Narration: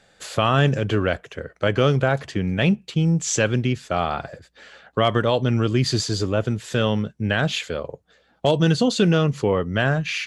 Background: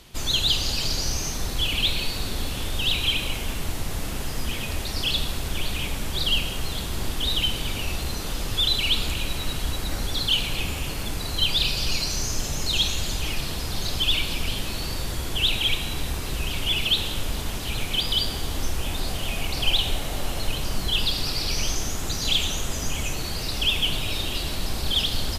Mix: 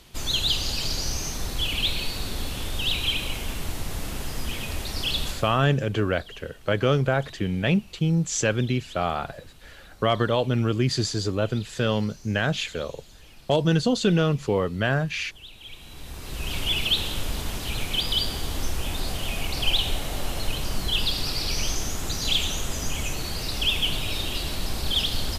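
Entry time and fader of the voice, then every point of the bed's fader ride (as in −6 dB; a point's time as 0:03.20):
5.05 s, −3.0 dB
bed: 0:05.28 −2 dB
0:05.69 −22.5 dB
0:15.54 −22.5 dB
0:16.54 −1 dB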